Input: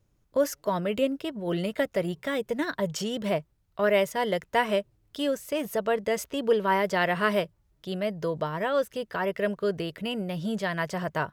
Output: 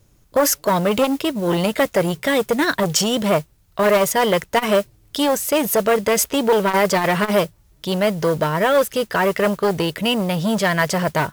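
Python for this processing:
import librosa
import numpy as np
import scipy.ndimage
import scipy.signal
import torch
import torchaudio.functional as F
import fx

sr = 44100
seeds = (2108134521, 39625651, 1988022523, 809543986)

p1 = fx.high_shelf(x, sr, hz=4300.0, db=7.5)
p2 = fx.mod_noise(p1, sr, seeds[0], snr_db=22)
p3 = fx.fold_sine(p2, sr, drive_db=9, ceiling_db=-9.0)
p4 = p2 + (p3 * librosa.db_to_amplitude(-6.5))
p5 = fx.transformer_sat(p4, sr, knee_hz=580.0)
y = p5 * librosa.db_to_amplitude(3.0)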